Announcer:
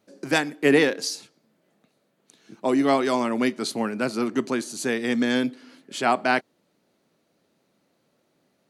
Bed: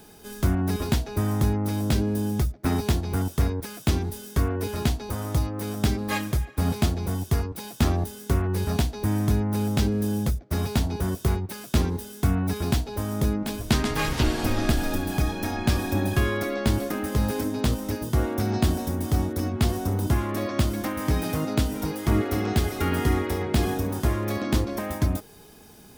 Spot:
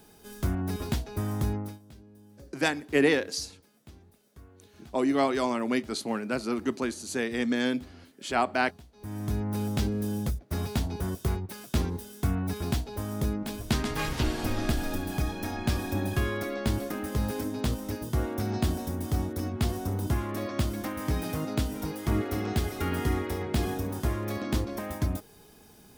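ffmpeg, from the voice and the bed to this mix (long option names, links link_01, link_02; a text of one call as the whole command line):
ffmpeg -i stem1.wav -i stem2.wav -filter_complex "[0:a]adelay=2300,volume=-4.5dB[link_01];[1:a]volume=17dB,afade=type=out:start_time=1.56:duration=0.23:silence=0.0794328,afade=type=in:start_time=8.91:duration=0.57:silence=0.0707946[link_02];[link_01][link_02]amix=inputs=2:normalize=0" out.wav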